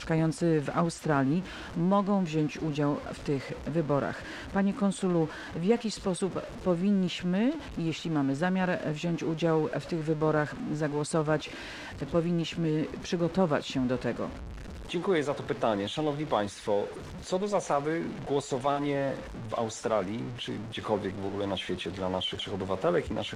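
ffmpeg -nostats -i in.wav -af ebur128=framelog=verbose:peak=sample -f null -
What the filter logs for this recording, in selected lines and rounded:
Integrated loudness:
  I:         -30.2 LUFS
  Threshold: -40.2 LUFS
Loudness range:
  LRA:         2.8 LU
  Threshold: -50.4 LUFS
  LRA low:   -32.0 LUFS
  LRA high:  -29.2 LUFS
Sample peak:
  Peak:      -12.8 dBFS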